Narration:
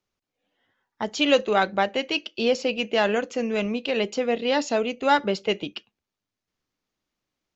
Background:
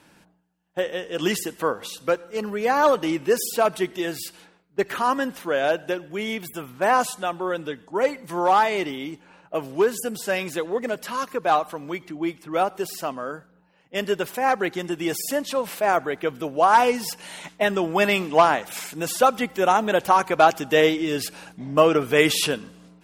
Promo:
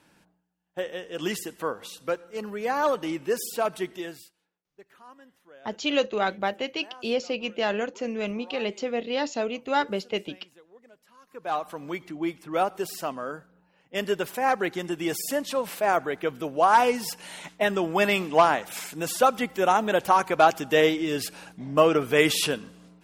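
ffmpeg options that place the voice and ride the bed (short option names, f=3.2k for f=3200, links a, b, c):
-filter_complex "[0:a]adelay=4650,volume=-4.5dB[a];[1:a]volume=19.5dB,afade=t=out:st=3.93:d=0.4:silence=0.0794328,afade=t=in:st=11.25:d=0.61:silence=0.0530884[b];[a][b]amix=inputs=2:normalize=0"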